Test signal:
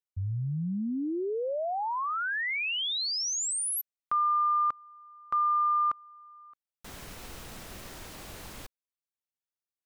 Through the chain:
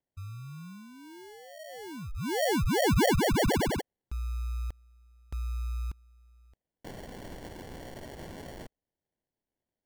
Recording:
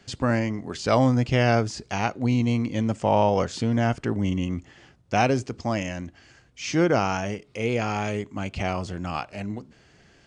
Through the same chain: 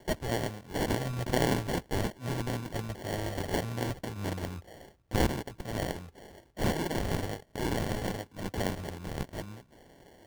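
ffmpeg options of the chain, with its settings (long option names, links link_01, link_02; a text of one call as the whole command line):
ffmpeg -i in.wav -filter_complex "[0:a]equalizer=frequency=125:width_type=o:width=1:gain=-4,equalizer=frequency=250:width_type=o:width=1:gain=-11,equalizer=frequency=500:width_type=o:width=1:gain=-11,equalizer=frequency=1000:width_type=o:width=1:gain=-4,equalizer=frequency=2000:width_type=o:width=1:gain=7,equalizer=frequency=4000:width_type=o:width=1:gain=10,equalizer=frequency=8000:width_type=o:width=1:gain=8,acrossover=split=190|990|1700[link_01][link_02][link_03][link_04];[link_02]asoftclip=type=tanh:threshold=-38dB[link_05];[link_01][link_05][link_03][link_04]amix=inputs=4:normalize=0,acrusher=samples=35:mix=1:aa=0.000001,volume=-4dB" out.wav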